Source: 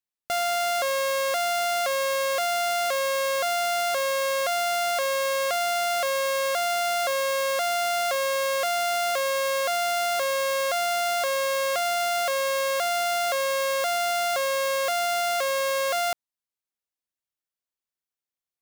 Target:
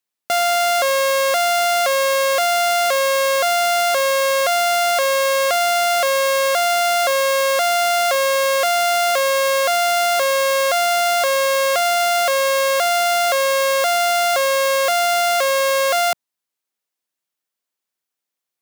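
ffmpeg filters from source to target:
ffmpeg -i in.wav -af "highpass=170,volume=8dB" out.wav

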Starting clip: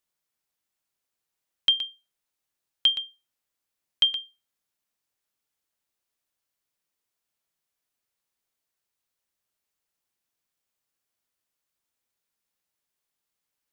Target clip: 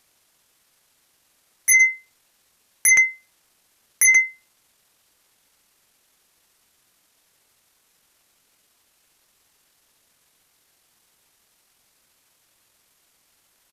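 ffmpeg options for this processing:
ffmpeg -i in.wav -af "aeval=exprs='0.299*sin(PI/2*7.08*val(0)/0.299)':channel_layout=same,asetrate=28595,aresample=44100,atempo=1.54221" out.wav

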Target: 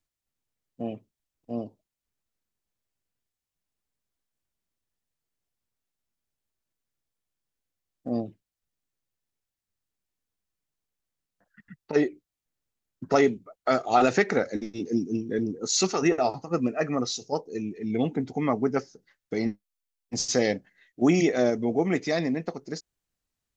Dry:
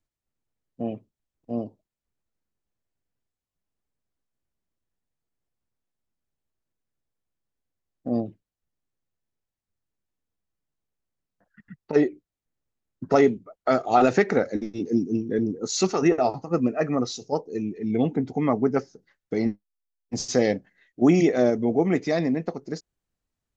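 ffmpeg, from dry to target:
ffmpeg -i in.wav -af "tiltshelf=frequency=1500:gain=-3.5" out.wav

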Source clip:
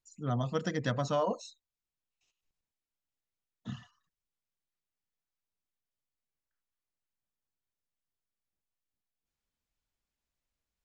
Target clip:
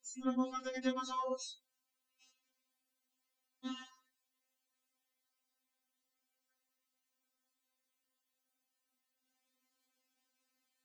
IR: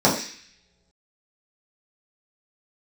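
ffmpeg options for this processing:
-af "highpass=160,acompressor=threshold=-41dB:ratio=10,afftfilt=real='re*3.46*eq(mod(b,12),0)':imag='im*3.46*eq(mod(b,12),0)':win_size=2048:overlap=0.75,volume=10.5dB"

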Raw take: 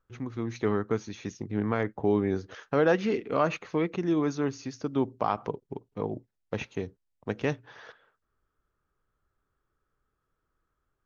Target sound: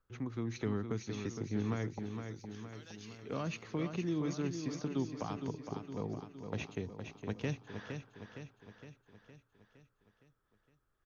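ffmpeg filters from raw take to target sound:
ffmpeg -i in.wav -filter_complex "[0:a]acrossover=split=240|3000[link_01][link_02][link_03];[link_02]acompressor=threshold=-37dB:ratio=6[link_04];[link_01][link_04][link_03]amix=inputs=3:normalize=0,asettb=1/sr,asplit=3[link_05][link_06][link_07];[link_05]atrim=end=1.994[link_08];[link_06]atrim=start=1.99:end=3.23,asetpts=PTS-STARTPTS,afade=type=in:duration=0.004:curve=qsin,afade=type=out:start_time=1.236:duration=0.004:curve=qsin,aderivative[link_09];[link_07]atrim=start=3.226[link_10];[link_08][link_09]acrossfade=duration=0.004:curve1=hsin:curve2=qsin[link_11];[link_11][link_10]acrossfade=duration=0.004:curve1=qsin:curve2=hsin,asplit=2[link_12][link_13];[link_13]aecho=0:1:463|926|1389|1852|2315|2778|3241:0.447|0.25|0.14|0.0784|0.0439|0.0246|0.0138[link_14];[link_12][link_14]amix=inputs=2:normalize=0,volume=-3dB" out.wav

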